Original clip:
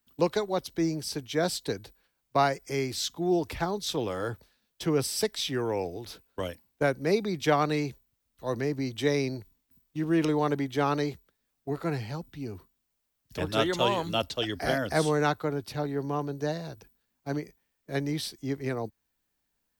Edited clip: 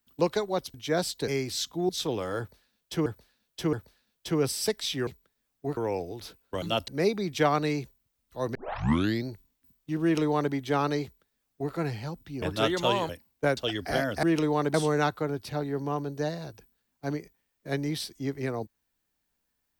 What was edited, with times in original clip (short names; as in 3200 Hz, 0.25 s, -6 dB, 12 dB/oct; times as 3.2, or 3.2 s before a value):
0.74–1.2 cut
1.74–2.71 cut
3.32–3.78 cut
4.28–4.95 loop, 3 plays
6.47–6.95 swap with 14.05–14.31
8.62 tape start 0.71 s
10.09–10.6 copy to 14.97
11.1–11.8 copy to 5.62
12.49–13.38 cut